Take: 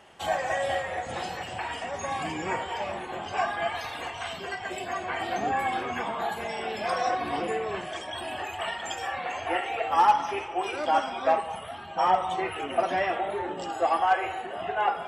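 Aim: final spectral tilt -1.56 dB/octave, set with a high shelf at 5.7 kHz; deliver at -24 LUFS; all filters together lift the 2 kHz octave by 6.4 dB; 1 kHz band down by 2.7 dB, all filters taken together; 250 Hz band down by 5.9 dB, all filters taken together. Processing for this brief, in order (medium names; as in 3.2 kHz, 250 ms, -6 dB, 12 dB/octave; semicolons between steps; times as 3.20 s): peaking EQ 250 Hz -9 dB; peaking EQ 1 kHz -5 dB; peaking EQ 2 kHz +8.5 dB; treble shelf 5.7 kHz +8.5 dB; trim +4 dB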